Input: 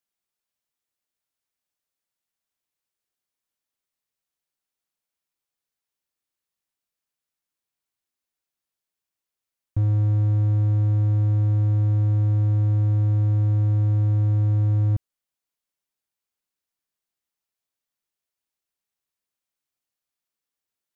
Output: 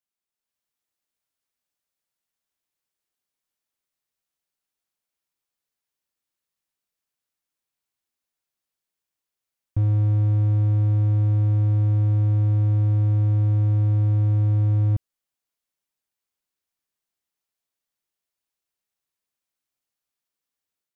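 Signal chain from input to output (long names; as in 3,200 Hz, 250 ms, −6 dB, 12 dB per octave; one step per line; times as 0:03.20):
automatic gain control gain up to 6 dB
level −5.5 dB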